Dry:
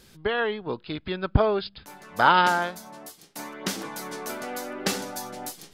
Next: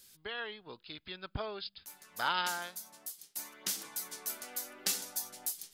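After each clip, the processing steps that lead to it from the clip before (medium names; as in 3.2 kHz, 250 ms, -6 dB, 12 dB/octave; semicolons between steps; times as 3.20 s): pre-emphasis filter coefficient 0.9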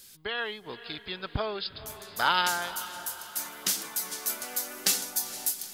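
echo that smears into a reverb 473 ms, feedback 52%, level -14 dB; trim +7.5 dB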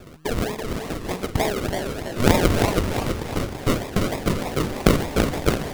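decimation with a swept rate 42×, swing 60% 3.3 Hz; modulated delay 337 ms, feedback 46%, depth 216 cents, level -5 dB; trim +8.5 dB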